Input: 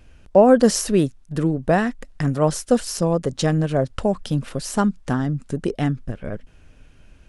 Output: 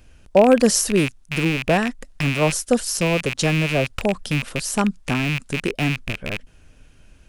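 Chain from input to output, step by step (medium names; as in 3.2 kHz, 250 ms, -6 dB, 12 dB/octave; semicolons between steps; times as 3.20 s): rattle on loud lows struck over -33 dBFS, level -14 dBFS; treble shelf 5.2 kHz +8 dB; trim -1 dB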